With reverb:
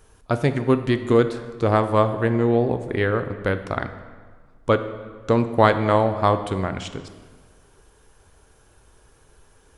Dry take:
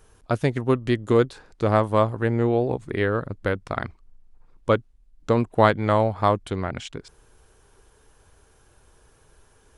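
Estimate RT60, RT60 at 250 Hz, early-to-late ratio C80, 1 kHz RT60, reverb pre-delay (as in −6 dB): 1.6 s, 1.6 s, 12.5 dB, 1.5 s, 4 ms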